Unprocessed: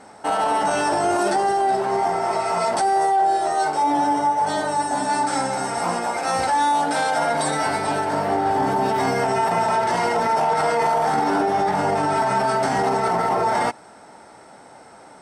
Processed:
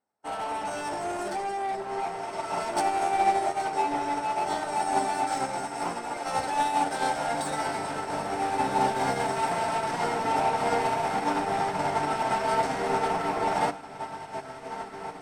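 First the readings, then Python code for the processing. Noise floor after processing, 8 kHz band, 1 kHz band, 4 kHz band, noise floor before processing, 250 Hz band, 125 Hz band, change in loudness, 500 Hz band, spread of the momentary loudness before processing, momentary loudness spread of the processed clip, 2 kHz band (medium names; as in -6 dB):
-41 dBFS, -7.5 dB, -7.0 dB, -6.0 dB, -46 dBFS, -8.0 dB, -7.5 dB, -7.5 dB, -8.0 dB, 3 LU, 8 LU, -6.5 dB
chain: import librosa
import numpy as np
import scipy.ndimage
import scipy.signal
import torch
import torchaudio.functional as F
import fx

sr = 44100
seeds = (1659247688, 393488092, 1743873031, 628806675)

y = 10.0 ** (-19.5 / 20.0) * np.tanh(x / 10.0 ** (-19.5 / 20.0))
y = fx.echo_diffused(y, sr, ms=1980, feedback_pct=51, wet_db=-4)
y = fx.upward_expand(y, sr, threshold_db=-45.0, expansion=2.5)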